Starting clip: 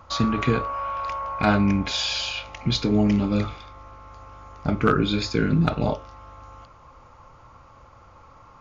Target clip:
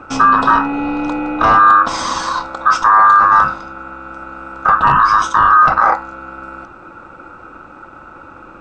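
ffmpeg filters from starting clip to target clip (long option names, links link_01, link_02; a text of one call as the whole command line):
ffmpeg -i in.wav -af "aeval=exprs='val(0)*sin(2*PI*1400*n/s)':channel_layout=same,apsyclip=20.5dB,highshelf=frequency=1600:width_type=q:width=3:gain=-9.5,volume=-5.5dB" out.wav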